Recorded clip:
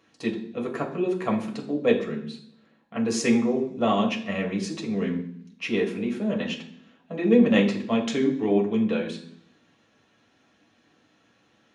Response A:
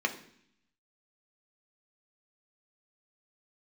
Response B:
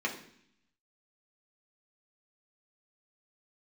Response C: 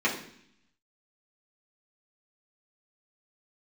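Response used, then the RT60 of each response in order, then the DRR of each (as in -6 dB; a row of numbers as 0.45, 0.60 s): B; 0.65, 0.65, 0.65 s; 3.5, -2.0, -6.5 dB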